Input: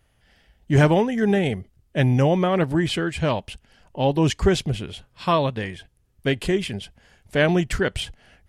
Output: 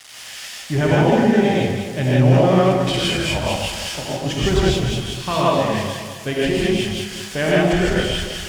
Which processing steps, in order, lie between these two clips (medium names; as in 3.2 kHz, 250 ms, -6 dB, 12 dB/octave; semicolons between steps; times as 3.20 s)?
zero-crossing glitches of -19 dBFS; low-pass 5.3 kHz 12 dB/octave; band-stop 4.1 kHz, Q 27; in parallel at -0.5 dB: peak limiter -14.5 dBFS, peak gain reduction 10 dB; 2.59–4.26 s: on the sum: compressor with a negative ratio -20 dBFS, ratio -0.5; crossover distortion -40 dBFS; on a send: echo whose repeats swap between lows and highs 103 ms, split 890 Hz, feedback 68%, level -3.5 dB; on the sum: gated-style reverb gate 190 ms rising, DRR -6 dB; trim -8 dB